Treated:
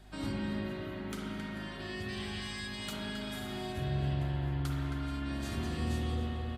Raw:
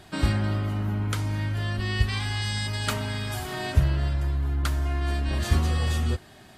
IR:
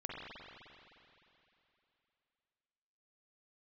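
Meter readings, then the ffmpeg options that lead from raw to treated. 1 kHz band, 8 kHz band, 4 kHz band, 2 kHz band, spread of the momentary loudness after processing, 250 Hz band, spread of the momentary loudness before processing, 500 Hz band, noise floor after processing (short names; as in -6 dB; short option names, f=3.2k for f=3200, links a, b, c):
-8.5 dB, -11.5 dB, -8.5 dB, -9.0 dB, 6 LU, -4.0 dB, 5 LU, -5.5 dB, -42 dBFS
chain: -filter_complex "[0:a]highpass=140,asplit=2[a][b];[b]adelay=268.2,volume=-8dB,highshelf=f=4k:g=-6.04[c];[a][c]amix=inputs=2:normalize=0,aeval=exprs='val(0)+0.00708*(sin(2*PI*50*n/s)+sin(2*PI*2*50*n/s)/2+sin(2*PI*3*50*n/s)/3+sin(2*PI*4*50*n/s)/4+sin(2*PI*5*50*n/s)/5)':c=same,volume=19dB,asoftclip=hard,volume=-19dB[d];[1:a]atrim=start_sample=2205[e];[d][e]afir=irnorm=-1:irlink=0,acrossover=split=450|3000[f][g][h];[g]acompressor=threshold=-38dB:ratio=6[i];[f][i][h]amix=inputs=3:normalize=0,volume=-6.5dB"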